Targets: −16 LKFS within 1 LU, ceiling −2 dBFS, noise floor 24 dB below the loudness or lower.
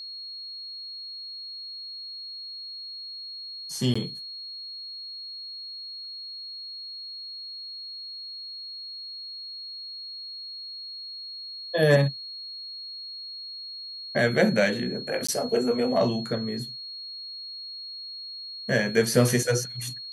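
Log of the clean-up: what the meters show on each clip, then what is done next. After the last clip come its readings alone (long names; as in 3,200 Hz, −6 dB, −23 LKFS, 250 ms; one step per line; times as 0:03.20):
number of dropouts 2; longest dropout 15 ms; interfering tone 4,300 Hz; level of the tone −36 dBFS; integrated loudness −29.5 LKFS; sample peak −7.5 dBFS; target loudness −16.0 LKFS
→ repair the gap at 0:03.94/0:15.27, 15 ms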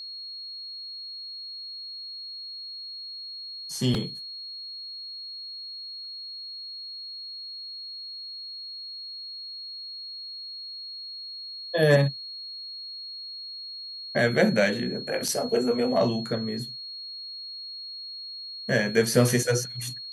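number of dropouts 0; interfering tone 4,300 Hz; level of the tone −36 dBFS
→ notch filter 4,300 Hz, Q 30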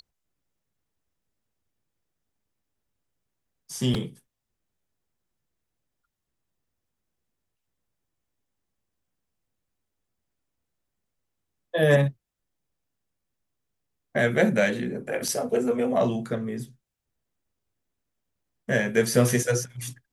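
interfering tone none found; integrated loudness −25.0 LKFS; sample peak −7.5 dBFS; target loudness −16.0 LKFS
→ level +9 dB
brickwall limiter −2 dBFS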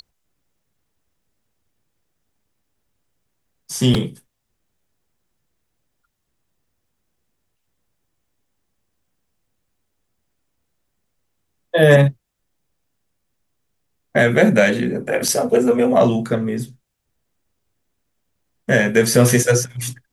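integrated loudness −16.5 LKFS; sample peak −2.0 dBFS; background noise floor −74 dBFS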